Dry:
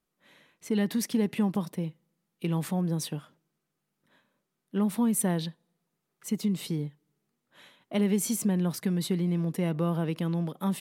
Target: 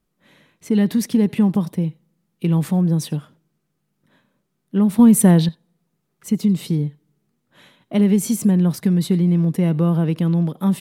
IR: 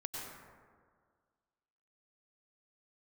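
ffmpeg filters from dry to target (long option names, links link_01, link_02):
-filter_complex "[1:a]atrim=start_sample=2205,atrim=end_sample=3969[link_01];[0:a][link_01]afir=irnorm=-1:irlink=0,asettb=1/sr,asplit=3[link_02][link_03][link_04];[link_02]atrim=end=4.994[link_05];[link_03]atrim=start=4.99:end=5.49,asetpts=PTS-STARTPTS,afade=type=in:duration=0.004:curve=qsin,afade=type=out:start_time=0.496:duration=0.004:curve=qsin,acontrast=33[link_06];[link_04]atrim=start=5.486[link_07];[link_05][link_06]acrossfade=duration=0.004:curve1=hsin:curve2=qsin[link_08];[link_08][link_07]acrossfade=duration=0.004:curve1=qsin:curve2=hsin,lowshelf=frequency=260:gain=11,volume=8dB"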